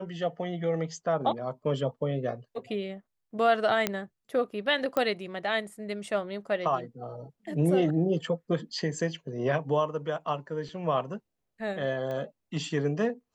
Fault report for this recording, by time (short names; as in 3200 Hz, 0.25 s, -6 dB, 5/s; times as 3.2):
3.87 pop -10 dBFS
4.97 pop -15 dBFS
12.11 pop -25 dBFS